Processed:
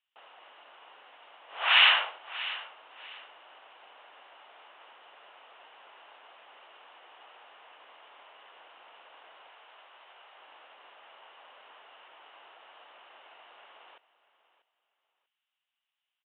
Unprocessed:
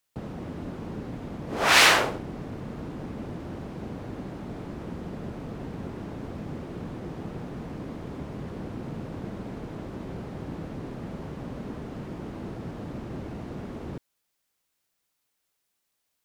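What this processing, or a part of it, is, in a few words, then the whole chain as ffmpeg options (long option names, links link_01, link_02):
musical greeting card: -filter_complex "[0:a]asettb=1/sr,asplit=3[link_01][link_02][link_03];[link_01]atrim=end=9.484[link_04];[link_02]atrim=start=9.48:end=10.37,asetpts=PTS-STARTPTS,afade=type=in:duration=0.004:curve=qsin,afade=type=out:start_time=0.886:duration=0.004:curve=qsin,highpass=frequency=470:poles=1[link_05];[link_03]atrim=start=10.366[link_06];[link_04][link_05]acrossfade=duration=0.004:curve1=hsin:curve2=qsin[link_07];[link_07][link_06]acrossfade=duration=0.004:curve1=qsin:curve2=hsin,aecho=1:1:641|1282:0.158|0.0396,aresample=8000,aresample=44100,highpass=frequency=770:width=0.5412,highpass=frequency=770:width=1.3066,equalizer=frequency=2900:width_type=o:width=0.3:gain=11,volume=-5.5dB"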